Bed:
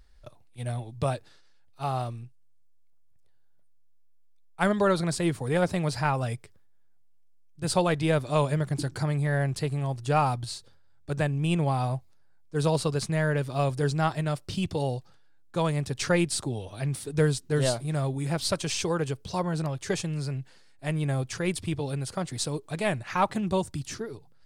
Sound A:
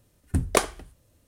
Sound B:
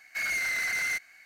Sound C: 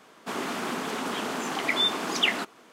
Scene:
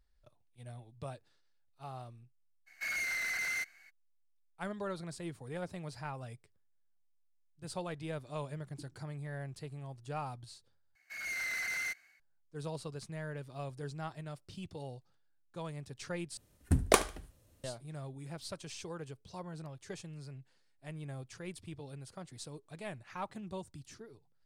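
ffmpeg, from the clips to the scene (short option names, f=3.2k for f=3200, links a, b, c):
-filter_complex "[2:a]asplit=2[a][b];[0:a]volume=-16dB[c];[b]dynaudnorm=f=120:g=5:m=9dB[d];[1:a]aecho=1:1:74|148:0.119|0.0345[e];[c]asplit=3[f][g][h];[f]atrim=end=10.954[i];[d]atrim=end=1.25,asetpts=PTS-STARTPTS,volume=-16dB[j];[g]atrim=start=12.196:end=16.374[k];[e]atrim=end=1.27,asetpts=PTS-STARTPTS,volume=-3.5dB[l];[h]atrim=start=17.636[m];[a]atrim=end=1.25,asetpts=PTS-STARTPTS,volume=-6dB,afade=t=in:d=0.02,afade=t=out:st=1.23:d=0.02,adelay=2660[n];[i][j]acrossfade=d=0.004:c1=hsin:c2=hsin[o];[o][k]acrossfade=d=0.004:c1=hsin:c2=hsin[p];[p][l]acrossfade=d=0.004:c1=hsin:c2=hsin[q];[q][m]acrossfade=d=0.004:c1=hsin:c2=hsin[r];[r][n]amix=inputs=2:normalize=0"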